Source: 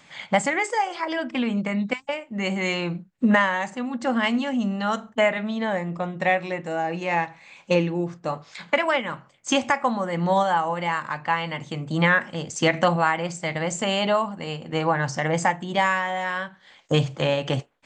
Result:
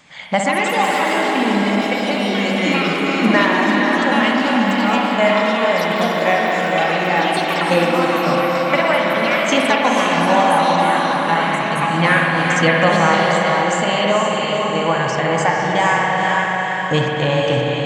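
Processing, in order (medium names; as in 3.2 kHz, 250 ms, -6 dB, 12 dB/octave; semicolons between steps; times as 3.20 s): echo that smears into a reverb 488 ms, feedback 45%, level -3 dB; ever faster or slower copies 235 ms, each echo +5 st, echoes 3, each echo -6 dB; spring tank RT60 3.2 s, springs 55 ms, chirp 20 ms, DRR 0 dB; trim +2.5 dB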